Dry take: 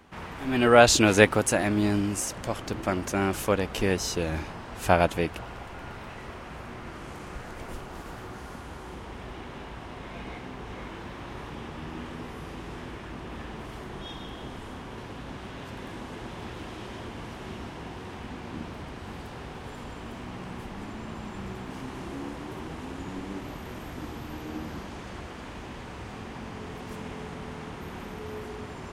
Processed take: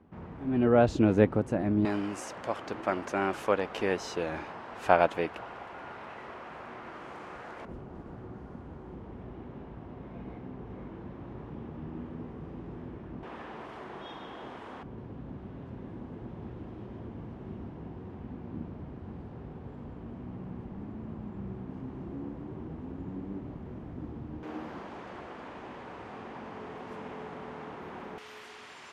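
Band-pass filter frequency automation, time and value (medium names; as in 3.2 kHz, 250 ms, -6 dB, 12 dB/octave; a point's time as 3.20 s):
band-pass filter, Q 0.55
170 Hz
from 1.85 s 880 Hz
from 7.65 s 180 Hz
from 13.23 s 800 Hz
from 14.83 s 150 Hz
from 24.43 s 700 Hz
from 28.18 s 3.5 kHz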